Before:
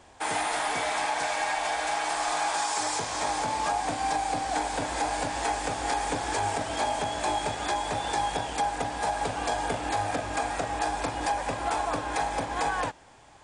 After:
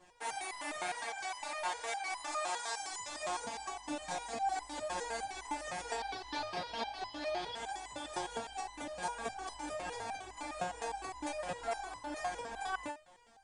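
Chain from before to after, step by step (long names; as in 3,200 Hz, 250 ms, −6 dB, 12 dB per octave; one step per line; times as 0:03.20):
0:05.95–0:07.55: high shelf with overshoot 6,000 Hz −9 dB, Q 3
step-sequenced resonator 9.8 Hz 180–1,000 Hz
level +5 dB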